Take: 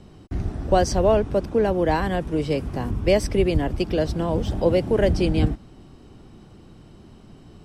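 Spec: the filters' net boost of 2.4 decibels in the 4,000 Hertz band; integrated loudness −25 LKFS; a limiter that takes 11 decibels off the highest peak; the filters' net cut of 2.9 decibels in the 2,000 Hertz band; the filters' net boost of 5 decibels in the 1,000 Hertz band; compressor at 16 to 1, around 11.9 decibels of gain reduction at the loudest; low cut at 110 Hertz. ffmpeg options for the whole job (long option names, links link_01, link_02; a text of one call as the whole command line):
ffmpeg -i in.wav -af "highpass=110,equalizer=frequency=1000:width_type=o:gain=8.5,equalizer=frequency=2000:width_type=o:gain=-8.5,equalizer=frequency=4000:width_type=o:gain=6,acompressor=threshold=-23dB:ratio=16,volume=7.5dB,alimiter=limit=-15dB:level=0:latency=1" out.wav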